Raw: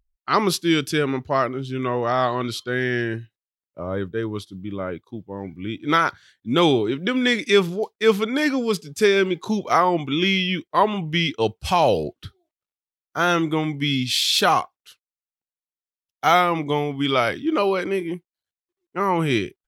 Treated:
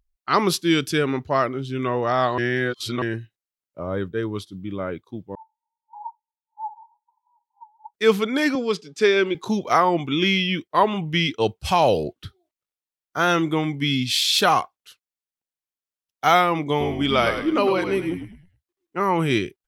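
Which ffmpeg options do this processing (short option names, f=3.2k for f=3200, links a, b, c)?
-filter_complex "[0:a]asettb=1/sr,asplit=3[a][b][c];[a]atrim=end=5.354[d];[b]atrim=start=5.35:end=7.94,asetpts=PTS-STARTPTS,afade=t=in:d=0.004:c=qsin,afade=t=out:st=2.586:d=0.004:c=qsin,asuperpass=centerf=890:order=12:qfactor=7.9[e];[c]atrim=start=7.936[f];[d][e]acrossfade=d=0.004:c1=hsin:c2=qsin[g];[g][f]acrossfade=d=0.004:c1=qsin:c2=hsin,asettb=1/sr,asplit=3[h][i][j];[h]atrim=end=8.554[k];[i]atrim=start=8.55:end=9.35,asetpts=PTS-STARTPTS,afade=t=in:d=0.004:c=qsin,afade=t=out:st=0.796:d=0.004:c=qsin,highpass=240,lowpass=5.5k[l];[j]atrim=start=9.346[m];[k][l]acrossfade=d=0.004:c1=hsin:c2=qsin[n];[n][m]acrossfade=d=0.004:c1=qsin:c2=hsin,asettb=1/sr,asplit=3[o][p][q];[o]atrim=end=16.694[r];[p]atrim=start=16.69:end=18.99,asetpts=PTS-STARTPTS,afade=t=in:d=0.004:c=qsin,afade=t=out:st=2.296:d=0.004:c=qsin,asplit=5[s][t][u][v][w];[t]adelay=105,afreqshift=-60,volume=-7.5dB[x];[u]adelay=210,afreqshift=-120,volume=-17.1dB[y];[v]adelay=315,afreqshift=-180,volume=-26.8dB[z];[w]adelay=420,afreqshift=-240,volume=-36.4dB[aa];[s][x][y][z][aa]amix=inputs=5:normalize=0,atrim=end_sample=101430[ab];[q]atrim=start=18.986[ac];[r][ab]acrossfade=d=0.004:c1=hsin:c2=qsin[ad];[ad][ac]acrossfade=d=0.004:c1=qsin:c2=hsin,asplit=3[ae][af][ag];[ae]atrim=end=2.382[ah];[af]atrim=start=2.378:end=3.022,asetpts=PTS-STARTPTS,areverse[ai];[ag]atrim=start=3.018[aj];[ah][ai]acrossfade=d=0.004:c1=hsin:c2=hsin[ak];[ak][aj]acrossfade=d=0.004:c1=hsin:c2=hsin"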